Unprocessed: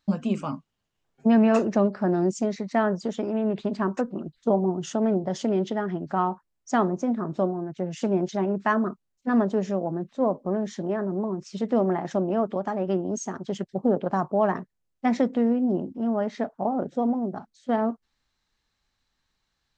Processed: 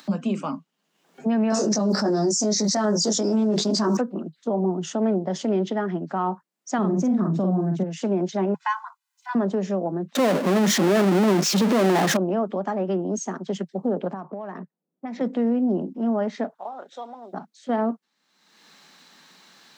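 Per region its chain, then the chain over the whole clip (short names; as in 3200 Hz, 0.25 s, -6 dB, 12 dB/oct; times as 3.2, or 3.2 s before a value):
1.5–3.97 resonant high shelf 3800 Hz +13 dB, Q 3 + doubler 19 ms -2 dB + fast leveller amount 100%
6.78–7.83 tone controls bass +14 dB, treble +6 dB + doubler 48 ms -4 dB
8.54–9.35 dynamic EQ 1400 Hz, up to -6 dB, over -37 dBFS, Q 1.6 + brick-wall FIR high-pass 710 Hz + comb 2 ms, depth 89%
10.15–12.17 notch 940 Hz + power-law curve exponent 0.35
14.13–15.21 low-pass opened by the level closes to 350 Hz, open at -17 dBFS + compressor 20:1, threshold -31 dBFS
16.55–17.33 Bessel high-pass 1400 Hz + bell 3700 Hz +10 dB 0.29 oct
whole clip: limiter -17.5 dBFS; steep high-pass 160 Hz 72 dB/oct; upward compressor, threshold -36 dBFS; gain +2.5 dB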